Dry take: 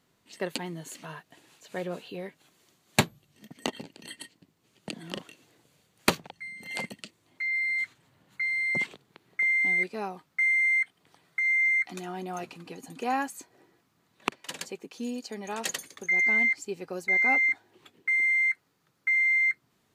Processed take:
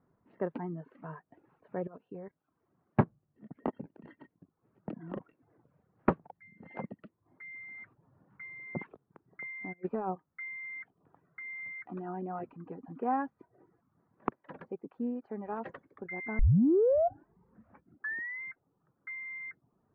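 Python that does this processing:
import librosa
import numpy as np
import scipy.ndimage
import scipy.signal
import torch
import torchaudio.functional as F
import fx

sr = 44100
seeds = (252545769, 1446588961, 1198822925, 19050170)

y = fx.level_steps(x, sr, step_db=14, at=(1.87, 2.99))
y = fx.over_compress(y, sr, threshold_db=-36.0, ratio=-1.0, at=(9.72, 10.14), fade=0.02)
y = fx.edit(y, sr, fx.tape_start(start_s=16.39, length_s=2.03), tone=tone)
y = scipy.signal.sosfilt(scipy.signal.butter(4, 1400.0, 'lowpass', fs=sr, output='sos'), y)
y = fx.dereverb_blind(y, sr, rt60_s=0.53)
y = fx.low_shelf(y, sr, hz=340.0, db=4.5)
y = F.gain(torch.from_numpy(y), -2.5).numpy()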